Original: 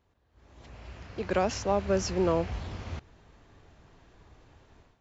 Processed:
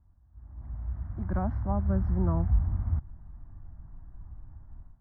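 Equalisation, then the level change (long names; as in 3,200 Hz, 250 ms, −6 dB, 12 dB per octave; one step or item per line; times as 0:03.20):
low-pass filter 2,500 Hz 24 dB per octave
spectral tilt −4.5 dB per octave
phaser with its sweep stopped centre 1,100 Hz, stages 4
−5.5 dB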